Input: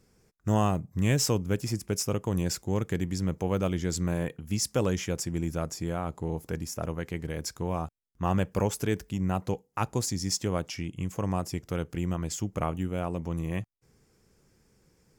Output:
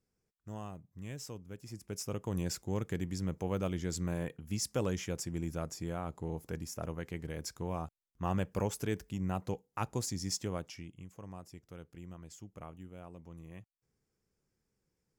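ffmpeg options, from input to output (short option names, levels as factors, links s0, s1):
-af "volume=0.473,afade=t=in:st=1.59:d=0.79:silence=0.237137,afade=t=out:st=10.34:d=0.74:silence=0.266073"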